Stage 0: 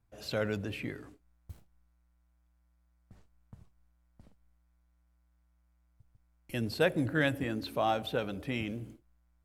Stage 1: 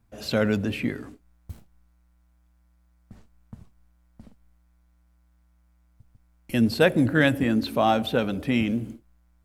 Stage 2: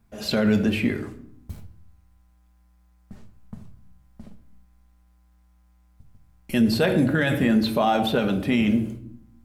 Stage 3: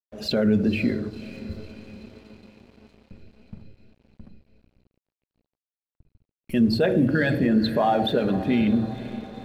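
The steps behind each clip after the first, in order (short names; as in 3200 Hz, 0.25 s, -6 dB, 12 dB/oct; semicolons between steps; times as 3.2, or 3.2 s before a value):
bell 230 Hz +8.5 dB 0.34 oct; gain +8 dB
on a send at -5.5 dB: reverb RT60 0.70 s, pre-delay 5 ms; on the sum: limiter -14 dBFS, peak gain reduction 9.5 dB; gain +3 dB
formant sharpening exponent 1.5; diffused feedback echo 0.521 s, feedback 61%, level -14.5 dB; crossover distortion -50.5 dBFS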